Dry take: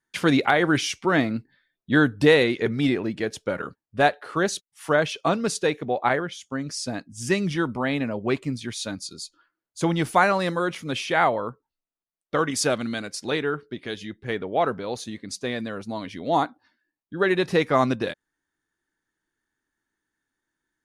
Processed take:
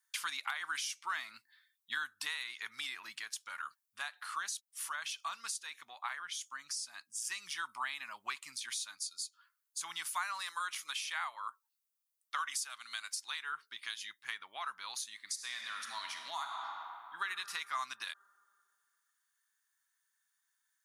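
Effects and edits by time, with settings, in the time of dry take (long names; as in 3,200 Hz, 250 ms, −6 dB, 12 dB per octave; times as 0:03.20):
0:03.17–0:07.25: downward compressor 1.5 to 1, threshold −38 dBFS
0:10.41–0:13.49: high-pass filter 310 Hz
0:15.16–0:17.23: thrown reverb, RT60 2.3 s, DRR 4 dB
whole clip: first difference; downward compressor 5 to 1, threshold −45 dBFS; low shelf with overshoot 720 Hz −13.5 dB, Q 3; level +6.5 dB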